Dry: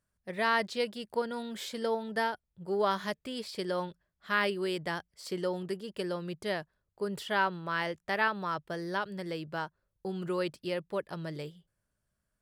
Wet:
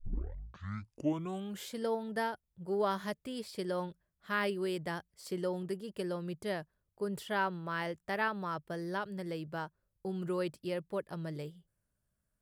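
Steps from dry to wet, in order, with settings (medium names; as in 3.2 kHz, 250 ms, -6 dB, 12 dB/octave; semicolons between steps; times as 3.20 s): tape start-up on the opening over 1.68 s; FFT filter 140 Hz 0 dB, 4.2 kHz -7 dB, 11 kHz 0 dB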